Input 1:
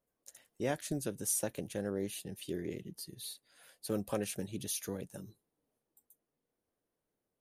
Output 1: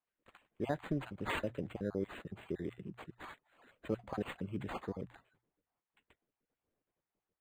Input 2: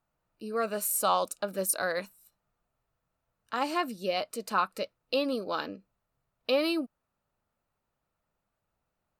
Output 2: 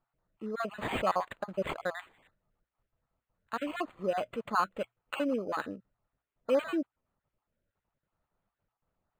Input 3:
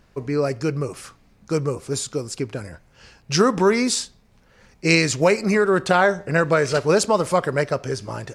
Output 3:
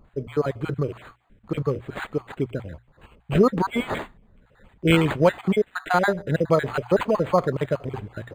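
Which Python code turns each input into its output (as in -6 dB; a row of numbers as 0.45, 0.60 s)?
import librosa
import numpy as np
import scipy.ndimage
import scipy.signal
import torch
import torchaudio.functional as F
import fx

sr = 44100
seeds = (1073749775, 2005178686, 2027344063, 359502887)

y = fx.spec_dropout(x, sr, seeds[0], share_pct=43)
y = fx.low_shelf(y, sr, hz=120.0, db=5.0)
y = fx.hum_notches(y, sr, base_hz=60, count=2)
y = np.interp(np.arange(len(y)), np.arange(len(y))[::8], y[::8])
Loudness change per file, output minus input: -3.0, -3.5, -3.0 LU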